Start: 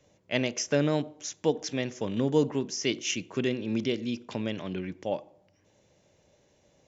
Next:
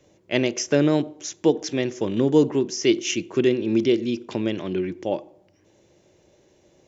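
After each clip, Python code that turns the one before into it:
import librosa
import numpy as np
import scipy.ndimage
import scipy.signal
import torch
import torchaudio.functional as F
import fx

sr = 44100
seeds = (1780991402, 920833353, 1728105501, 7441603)

y = fx.peak_eq(x, sr, hz=350.0, db=11.0, octaves=0.36)
y = y * librosa.db_to_amplitude(4.0)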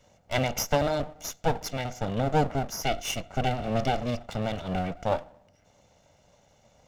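y = fx.lower_of_two(x, sr, delay_ms=1.4)
y = fx.rider(y, sr, range_db=10, speed_s=2.0)
y = y * librosa.db_to_amplitude(-2.5)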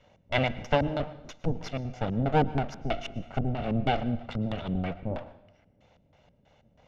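y = fx.filter_lfo_lowpass(x, sr, shape='square', hz=3.1, low_hz=300.0, high_hz=3000.0, q=1.2)
y = fx.rev_plate(y, sr, seeds[0], rt60_s=0.8, hf_ratio=0.95, predelay_ms=95, drr_db=16.5)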